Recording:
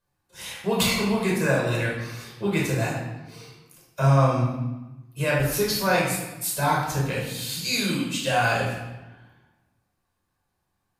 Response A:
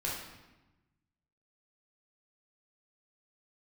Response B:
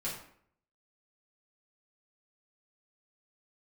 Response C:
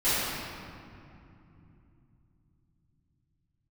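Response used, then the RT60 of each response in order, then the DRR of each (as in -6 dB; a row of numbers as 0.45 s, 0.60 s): A; 1.1 s, 0.60 s, 2.8 s; -5.0 dB, -8.0 dB, -17.5 dB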